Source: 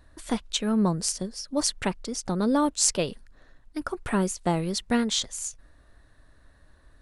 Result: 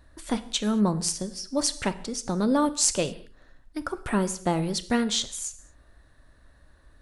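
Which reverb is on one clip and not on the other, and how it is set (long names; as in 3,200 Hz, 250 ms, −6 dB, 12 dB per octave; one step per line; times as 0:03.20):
reverb whose tail is shaped and stops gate 250 ms falling, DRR 12 dB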